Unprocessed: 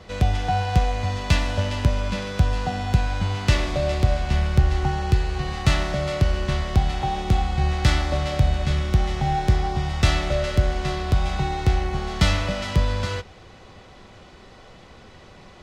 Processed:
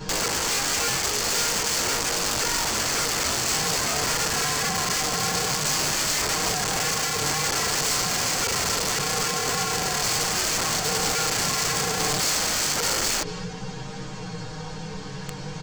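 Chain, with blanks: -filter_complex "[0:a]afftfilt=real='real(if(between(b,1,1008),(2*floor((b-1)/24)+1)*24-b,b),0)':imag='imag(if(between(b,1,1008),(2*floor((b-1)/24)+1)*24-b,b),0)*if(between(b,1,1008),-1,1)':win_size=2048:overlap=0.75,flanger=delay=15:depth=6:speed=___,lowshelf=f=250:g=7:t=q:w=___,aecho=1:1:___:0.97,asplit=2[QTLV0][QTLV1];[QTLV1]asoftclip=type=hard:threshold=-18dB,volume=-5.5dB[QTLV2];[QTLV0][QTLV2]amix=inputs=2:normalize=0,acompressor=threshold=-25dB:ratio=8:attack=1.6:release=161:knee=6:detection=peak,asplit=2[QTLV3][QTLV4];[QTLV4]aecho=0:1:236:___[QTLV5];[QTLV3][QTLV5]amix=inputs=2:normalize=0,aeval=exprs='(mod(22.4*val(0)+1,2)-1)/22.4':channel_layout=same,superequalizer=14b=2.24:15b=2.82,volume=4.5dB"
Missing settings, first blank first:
0.36, 3, 6.5, 0.282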